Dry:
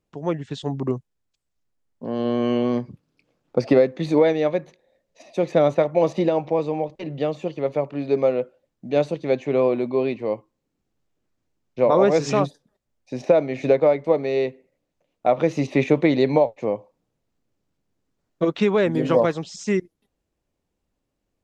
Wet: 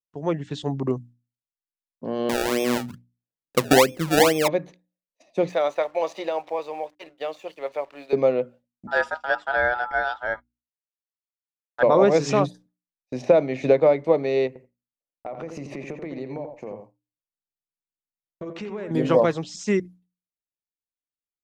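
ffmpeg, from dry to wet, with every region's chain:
ffmpeg -i in.wav -filter_complex "[0:a]asettb=1/sr,asplit=3[link_01][link_02][link_03];[link_01]atrim=end=2.294[link_04];[link_02]atrim=start=2.29:end=4.48,asetpts=PTS-STARTPTS,afade=type=in:duration=0.004:curve=qsin,afade=type=out:start_time=2.186:duration=0.004:curve=qsin,lowpass=1200,acrusher=samples=29:mix=1:aa=0.000001:lfo=1:lforange=29:lforate=2.3[link_05];[link_03]atrim=start=4.476[link_06];[link_04][link_05]acrossfade=duration=0.004:curve1=hsin:curve2=qsin[link_07];[link_07][link_06]acrossfade=duration=0.004:curve1=qsin:curve2=hsin,asettb=1/sr,asplit=3[link_08][link_09][link_10];[link_08]atrim=end=5.494[link_11];[link_09]atrim=start=5.49:end=8.13,asetpts=PTS-STARTPTS,afade=type=in:duration=0.004:curve=qsin,afade=type=out:start_time=2.636:duration=0.004:curve=qsin,highpass=700,aeval=exprs='sgn(val(0))*max(abs(val(0))-0.00133,0)':channel_layout=same[link_12];[link_10]atrim=start=8.126[link_13];[link_11][link_12]acrossfade=duration=0.004:curve1=hsin:curve2=qsin[link_14];[link_14][link_13]acrossfade=duration=0.004:curve1=qsin:curve2=hsin,asettb=1/sr,asplit=3[link_15][link_16][link_17];[link_15]atrim=end=8.874[link_18];[link_16]atrim=start=8.87:end=11.83,asetpts=PTS-STARTPTS,afade=type=in:duration=0.004:curve=qsin,afade=type=out:start_time=2.956:duration=0.004:curve=qsin,agate=range=-33dB:threshold=-34dB:ratio=3:release=100:detection=peak,aeval=exprs='val(0)*sin(2*PI*1100*n/s)':channel_layout=same[link_19];[link_17]atrim=start=11.826[link_20];[link_18][link_19]acrossfade=duration=0.004:curve1=hsin:curve2=qsin[link_21];[link_21][link_20]acrossfade=duration=0.004:curve1=qsin:curve2=hsin,asettb=1/sr,asplit=3[link_22][link_23][link_24];[link_22]atrim=end=14.474[link_25];[link_23]atrim=start=14.47:end=18.91,asetpts=PTS-STARTPTS,afade=type=in:duration=0.004:curve=qsin,afade=type=out:start_time=4.436:duration=0.004:curve=qsin,acompressor=threshold=-31dB:ratio=6:attack=3.2:release=140:knee=1:detection=peak,equalizer=frequency=3600:width_type=o:width=0.43:gain=-10,asplit=2[link_26][link_27];[link_27]adelay=86,lowpass=frequency=1900:poles=1,volume=-6dB,asplit=2[link_28][link_29];[link_29]adelay=86,lowpass=frequency=1900:poles=1,volume=0.17,asplit=2[link_30][link_31];[link_31]adelay=86,lowpass=frequency=1900:poles=1,volume=0.17[link_32];[link_26][link_28][link_30][link_32]amix=inputs=4:normalize=0,atrim=end_sample=195804[link_33];[link_24]atrim=start=18.906[link_34];[link_25][link_33]acrossfade=duration=0.004:curve1=hsin:curve2=qsin[link_35];[link_35][link_34]acrossfade=duration=0.004:curve1=qsin:curve2=hsin,agate=range=-33dB:threshold=-39dB:ratio=3:detection=peak,bandreject=frequency=60:width_type=h:width=6,bandreject=frequency=120:width_type=h:width=6,bandreject=frequency=180:width_type=h:width=6,bandreject=frequency=240:width_type=h:width=6,bandreject=frequency=300:width_type=h:width=6" out.wav

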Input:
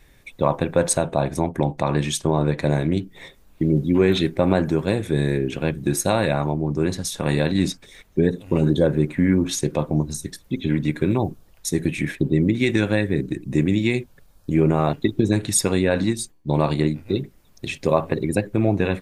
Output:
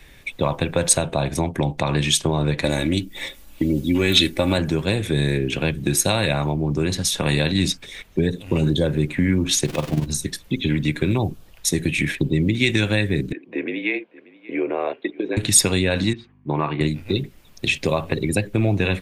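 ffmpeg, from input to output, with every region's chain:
ffmpeg -i in.wav -filter_complex "[0:a]asettb=1/sr,asplit=3[link_01][link_02][link_03];[link_01]atrim=end=2.644[link_04];[link_02]atrim=start=2.64:end=4.58,asetpts=PTS-STARTPTS,afade=type=in:duration=0.004:curve=qsin,afade=type=out:start_time=1.936:duration=0.004:curve=qsin,aemphasis=mode=production:type=cd,aecho=1:1:3.5:0.53,atrim=end_sample=85554[link_05];[link_03]atrim=start=4.576[link_06];[link_04][link_05]acrossfade=duration=0.004:curve1=hsin:curve2=qsin[link_07];[link_07][link_06]acrossfade=duration=0.004:curve1=qsin:curve2=hsin,asettb=1/sr,asplit=3[link_08][link_09][link_10];[link_08]atrim=end=9.654[link_11];[link_09]atrim=start=9.65:end=10.06,asetpts=PTS-STARTPTS,afade=type=in:duration=0.004:curve=qsin,afade=type=out:start_time=0.406:duration=0.004:curve=qsin,aeval=exprs='val(0)+0.5*0.0355*sgn(val(0))':channel_layout=same,tremolo=f=21:d=0.75[link_12];[link_10]atrim=start=10.056[link_13];[link_11][link_12]acrossfade=duration=0.004:curve1=hsin:curve2=qsin[link_14];[link_14][link_13]acrossfade=duration=0.004:curve1=qsin:curve2=hsin,asettb=1/sr,asplit=3[link_15][link_16][link_17];[link_15]atrim=end=13.324[link_18];[link_16]atrim=start=13.32:end=15.37,asetpts=PTS-STARTPTS,afade=type=in:duration=0.004:curve=qsin,afade=type=out:start_time=2.046:duration=0.004:curve=qsin,highpass=frequency=420:width=0.5412,highpass=frequency=420:width=1.3066,equalizer=frequency=460:width_type=q:width=4:gain=3,equalizer=frequency=880:width_type=q:width=4:gain=-5,equalizer=frequency=1300:width_type=q:width=4:gain=-8,equalizer=frequency=1900:width_type=q:width=4:gain=-4,lowpass=frequency=2400:width=0.5412,lowpass=frequency=2400:width=1.3066,afreqshift=-30,aecho=1:1:584:0.0708,atrim=end_sample=90405[link_19];[link_17]atrim=start=15.366[link_20];[link_18][link_19]acrossfade=duration=0.004:curve1=hsin:curve2=qsin[link_21];[link_21][link_20]acrossfade=duration=0.004:curve1=qsin:curve2=hsin,asettb=1/sr,asplit=3[link_22][link_23][link_24];[link_22]atrim=end=16.134[link_25];[link_23]atrim=start=16.13:end=16.81,asetpts=PTS-STARTPTS,afade=type=in:duration=0.004:curve=qsin,afade=type=out:start_time=0.676:duration=0.004:curve=qsin,aeval=exprs='val(0)+0.00501*(sin(2*PI*50*n/s)+sin(2*PI*2*50*n/s)/2+sin(2*PI*3*50*n/s)/3+sin(2*PI*4*50*n/s)/4+sin(2*PI*5*50*n/s)/5)':channel_layout=same,highpass=170,equalizer=frequency=200:width_type=q:width=4:gain=-9,equalizer=frequency=560:width_type=q:width=4:gain=-9,equalizer=frequency=1100:width_type=q:width=4:gain=5,lowpass=frequency=2300:width=0.5412,lowpass=frequency=2300:width=1.3066[link_26];[link_24]atrim=start=16.806[link_27];[link_25][link_26]acrossfade=duration=0.004:curve1=hsin:curve2=qsin[link_28];[link_28][link_27]acrossfade=duration=0.004:curve1=qsin:curve2=hsin,equalizer=frequency=2800:width_type=o:width=1.2:gain=6.5,acrossover=split=120|3000[link_29][link_30][link_31];[link_30]acompressor=threshold=-27dB:ratio=2.5[link_32];[link_29][link_32][link_31]amix=inputs=3:normalize=0,volume=5dB" out.wav

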